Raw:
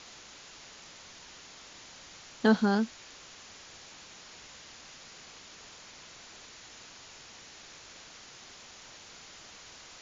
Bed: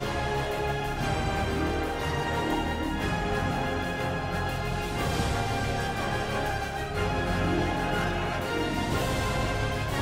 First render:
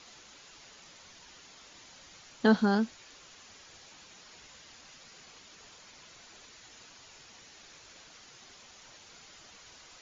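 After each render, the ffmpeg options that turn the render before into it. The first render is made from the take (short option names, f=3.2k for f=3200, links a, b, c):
-af "afftdn=nr=6:nf=-51"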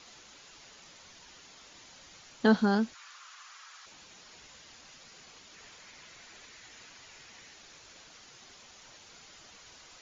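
-filter_complex "[0:a]asplit=3[a][b][c];[a]afade=t=out:st=2.93:d=0.02[d];[b]highpass=f=1.2k:t=q:w=3.2,afade=t=in:st=2.93:d=0.02,afade=t=out:st=3.85:d=0.02[e];[c]afade=t=in:st=3.85:d=0.02[f];[d][e][f]amix=inputs=3:normalize=0,asettb=1/sr,asplit=3[g][h][i];[g]atrim=end=5.544[j];[h]atrim=start=5.54:end=7.54,asetpts=PTS-STARTPTS,afade=t=in:d=0.004:c=qsin,afade=t=out:st=1.996:d=0.004:c=qsin,equalizer=f=2k:t=o:w=0.77:g=5[k];[i]atrim=start=7.536[l];[j][k]acrossfade=d=0.004:c1=hsin:c2=qsin[m];[m][l]acrossfade=d=0.004:c1=qsin:c2=hsin"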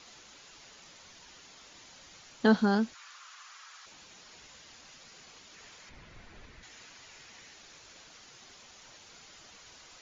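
-filter_complex "[0:a]asettb=1/sr,asplit=3[a][b][c];[a]atrim=end=5.894[d];[b]atrim=start=5.89:end=6.63,asetpts=PTS-STARTPTS,afade=t=in:d=0.004:c=qsin,afade=t=out:st=0.736:d=0.004:c=qsin,aemphasis=mode=reproduction:type=riaa[e];[c]atrim=start=6.626[f];[d][e]acrossfade=d=0.004:c1=hsin:c2=qsin[g];[g][f]acrossfade=d=0.004:c1=qsin:c2=hsin"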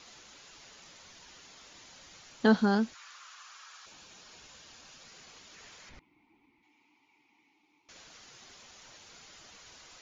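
-filter_complex "[0:a]asettb=1/sr,asplit=3[a][b][c];[a]atrim=end=3.334[d];[b]atrim=start=3.33:end=5.04,asetpts=PTS-STARTPTS,afade=t=in:d=0.004:c=qsin,afade=t=out:st=1.706:d=0.004:c=qsin,bandreject=f=2k:w=12[e];[c]atrim=start=5.036[f];[d][e]acrossfade=d=0.004:c1=hsin:c2=qsin[g];[g][f]acrossfade=d=0.004:c1=qsin:c2=hsin,asettb=1/sr,asplit=3[h][i][j];[h]atrim=end=5.994[k];[i]atrim=start=5.99:end=7.89,asetpts=PTS-STARTPTS,afade=t=in:d=0.004:c=qsin,afade=t=out:st=1.896:d=0.004:c=qsin,asplit=3[l][m][n];[l]bandpass=f=300:t=q:w=8,volume=0dB[o];[m]bandpass=f=870:t=q:w=8,volume=-6dB[p];[n]bandpass=f=2.24k:t=q:w=8,volume=-9dB[q];[o][p][q]amix=inputs=3:normalize=0[r];[j]atrim=start=7.886[s];[k][r]acrossfade=d=0.004:c1=hsin:c2=qsin[t];[t][s]acrossfade=d=0.004:c1=qsin:c2=hsin"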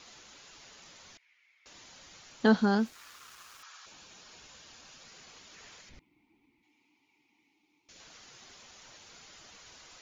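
-filter_complex "[0:a]asettb=1/sr,asplit=3[a][b][c];[a]atrim=end=1.174[d];[b]atrim=start=1.17:end=1.66,asetpts=PTS-STARTPTS,afade=t=in:d=0.004:c=qsin,afade=t=out:st=0.486:d=0.004:c=qsin,bandpass=f=2.2k:t=q:w=10[e];[c]atrim=start=1.656[f];[d][e]acrossfade=d=0.004:c1=hsin:c2=qsin[g];[g][f]acrossfade=d=0.004:c1=qsin:c2=hsin,asettb=1/sr,asplit=3[h][i][j];[h]atrim=end=2.804[k];[i]atrim=start=2.8:end=3.63,asetpts=PTS-STARTPTS,afade=t=in:d=0.004:c=qsin,afade=t=out:st=0.826:d=0.004:c=qsin,aeval=exprs='val(0)*gte(abs(val(0)),0.00282)':c=same[l];[j]atrim=start=3.626[m];[k][l]acrossfade=d=0.004:c1=hsin:c2=qsin[n];[n][m]acrossfade=d=0.004:c1=qsin:c2=hsin,asettb=1/sr,asplit=3[o][p][q];[o]atrim=end=5.814[r];[p]atrim=start=5.81:end=8,asetpts=PTS-STARTPTS,afade=t=in:d=0.004:c=qsin,afade=t=out:st=2.186:d=0.004:c=qsin,equalizer=f=1.1k:t=o:w=1.9:g=-7.5[s];[q]atrim=start=7.996[t];[r][s]acrossfade=d=0.004:c1=hsin:c2=qsin[u];[u][t]acrossfade=d=0.004:c1=qsin:c2=hsin"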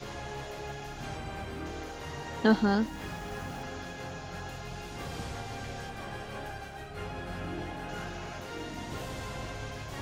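-filter_complex "[1:a]volume=-11dB[a];[0:a][a]amix=inputs=2:normalize=0"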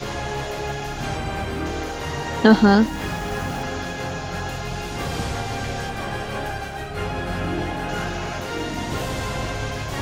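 -af "volume=12dB,alimiter=limit=-2dB:level=0:latency=1"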